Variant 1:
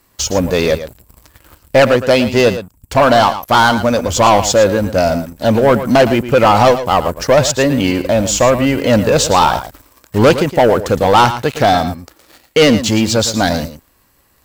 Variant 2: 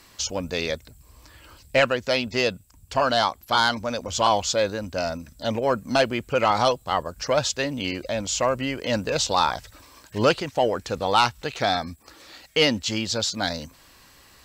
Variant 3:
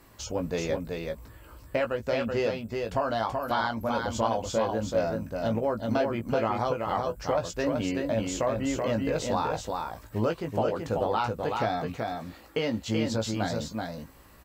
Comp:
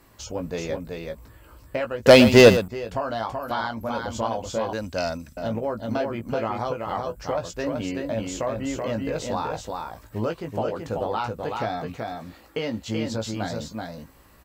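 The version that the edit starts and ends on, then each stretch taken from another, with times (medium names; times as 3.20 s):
3
2.06–2.68 s: from 1
4.73–5.37 s: from 2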